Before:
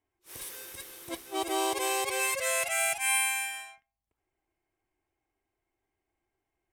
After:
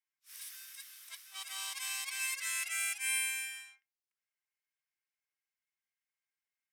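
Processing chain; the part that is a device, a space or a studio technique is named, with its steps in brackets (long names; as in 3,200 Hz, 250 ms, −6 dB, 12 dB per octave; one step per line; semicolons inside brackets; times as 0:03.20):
headphones lying on a table (high-pass filter 1,400 Hz 24 dB per octave; parametric band 5,200 Hz +5 dB 0.36 octaves)
level −6 dB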